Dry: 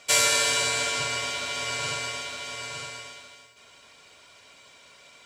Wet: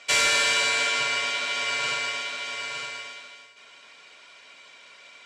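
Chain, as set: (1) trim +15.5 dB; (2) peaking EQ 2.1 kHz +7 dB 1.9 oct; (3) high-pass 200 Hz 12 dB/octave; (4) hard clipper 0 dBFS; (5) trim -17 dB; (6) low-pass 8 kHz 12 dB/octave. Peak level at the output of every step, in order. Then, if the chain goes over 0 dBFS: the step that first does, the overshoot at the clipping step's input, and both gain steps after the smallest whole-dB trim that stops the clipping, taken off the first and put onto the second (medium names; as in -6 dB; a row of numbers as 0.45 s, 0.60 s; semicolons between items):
+7.0 dBFS, +9.5 dBFS, +9.5 dBFS, 0.0 dBFS, -17.0 dBFS, -16.0 dBFS; step 1, 9.5 dB; step 1 +5.5 dB, step 5 -7 dB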